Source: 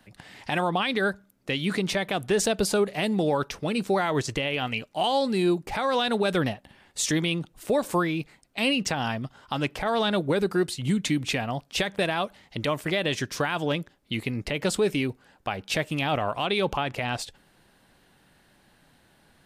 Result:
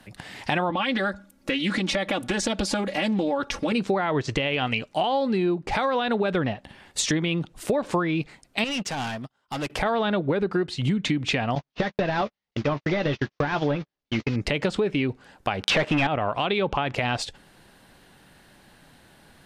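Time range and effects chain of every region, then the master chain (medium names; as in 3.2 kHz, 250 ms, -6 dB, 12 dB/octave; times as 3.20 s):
0.70–3.72 s: comb 3.6 ms, depth 96% + compression 2:1, threshold -30 dBFS + loudspeaker Doppler distortion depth 0.18 ms
8.64–9.70 s: bass shelf 130 Hz -10 dB + hard clipper -31 dBFS + upward expansion 2.5:1, over -49 dBFS
11.55–14.36 s: one-bit delta coder 32 kbps, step -38 dBFS + gate -33 dBFS, range -52 dB + doubling 14 ms -12 dB
15.63–16.07 s: high-pass 370 Hz 6 dB/octave + waveshaping leveller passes 5
whole clip: low-pass that closes with the level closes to 2.6 kHz, closed at -20.5 dBFS; compression, threshold -27 dBFS; trim +6.5 dB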